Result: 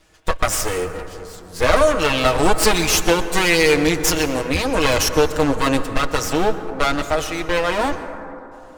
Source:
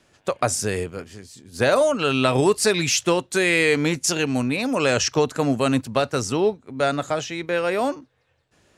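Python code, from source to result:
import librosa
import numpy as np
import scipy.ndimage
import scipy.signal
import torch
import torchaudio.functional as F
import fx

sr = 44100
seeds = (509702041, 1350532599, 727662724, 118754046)

y = fx.lower_of_two(x, sr, delay_ms=6.3)
y = fx.low_shelf_res(y, sr, hz=100.0, db=8.0, q=3.0)
y = fx.rev_plate(y, sr, seeds[0], rt60_s=3.0, hf_ratio=0.25, predelay_ms=105, drr_db=10.0)
y = y * librosa.db_to_amplitude(5.0)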